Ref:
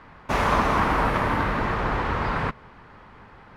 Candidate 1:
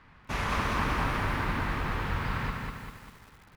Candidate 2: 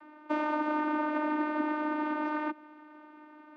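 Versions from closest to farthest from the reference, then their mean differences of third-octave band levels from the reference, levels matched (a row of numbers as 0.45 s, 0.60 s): 1, 2; 6.0 dB, 10.5 dB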